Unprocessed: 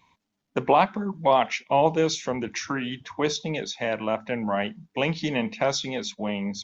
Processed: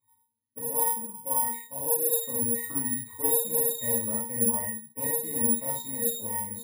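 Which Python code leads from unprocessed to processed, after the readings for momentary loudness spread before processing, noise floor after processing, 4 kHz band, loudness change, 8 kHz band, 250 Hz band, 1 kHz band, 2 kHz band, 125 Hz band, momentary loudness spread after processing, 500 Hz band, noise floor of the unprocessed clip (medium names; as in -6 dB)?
9 LU, -74 dBFS, -12.0 dB, 0.0 dB, no reading, -7.0 dB, -11.0 dB, -12.0 dB, -9.0 dB, 6 LU, -8.5 dB, -80 dBFS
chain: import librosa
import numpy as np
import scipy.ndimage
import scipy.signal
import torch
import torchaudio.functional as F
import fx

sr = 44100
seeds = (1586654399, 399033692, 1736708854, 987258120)

y = fx.high_shelf(x, sr, hz=6400.0, db=4.5)
y = fx.rider(y, sr, range_db=10, speed_s=0.5)
y = fx.octave_resonator(y, sr, note='A#', decay_s=0.34)
y = fx.rev_gated(y, sr, seeds[0], gate_ms=100, shape='flat', drr_db=-5.0)
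y = (np.kron(scipy.signal.resample_poly(y, 1, 4), np.eye(4)[0]) * 4)[:len(y)]
y = y * librosa.db_to_amplitude(2.5)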